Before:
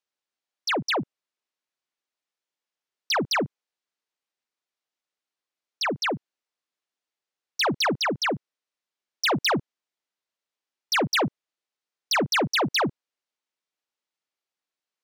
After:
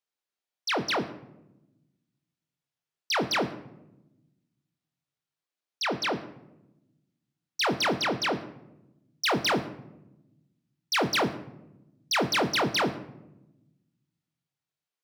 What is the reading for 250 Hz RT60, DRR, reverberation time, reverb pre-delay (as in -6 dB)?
1.6 s, 5.0 dB, 0.95 s, 22 ms